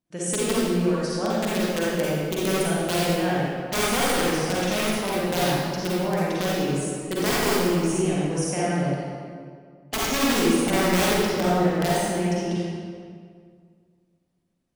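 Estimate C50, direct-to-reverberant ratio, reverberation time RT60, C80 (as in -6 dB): -5.5 dB, -7.5 dB, 2.1 s, -2.0 dB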